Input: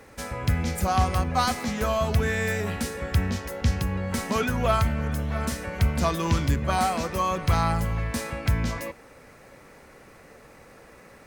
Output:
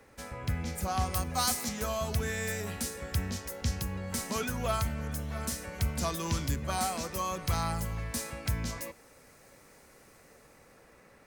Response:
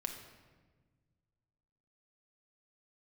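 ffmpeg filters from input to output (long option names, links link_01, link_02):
-filter_complex "[0:a]asettb=1/sr,asplit=3[link_01][link_02][link_03];[link_01]atrim=end=1.144[link_04];[link_02]atrim=start=1.14:end=1.69,asetpts=PTS-STARTPTS,afade=type=in:duration=0.004:curve=qsin,afade=type=out:start_time=0.546:duration=0.004:curve=qsin,highshelf=frequency=6900:gain=10[link_05];[link_03]atrim=start=1.686[link_06];[link_04][link_05]acrossfade=duration=0.004:curve1=hsin:curve2=qsin[link_07];[link_07][link_06]acrossfade=duration=0.004:curve1=qsin:curve2=hsin,acrossover=split=320|1300|4700[link_08][link_09][link_10][link_11];[link_11]dynaudnorm=framelen=190:gausssize=11:maxgain=10dB[link_12];[link_08][link_09][link_10][link_12]amix=inputs=4:normalize=0,volume=-8.5dB"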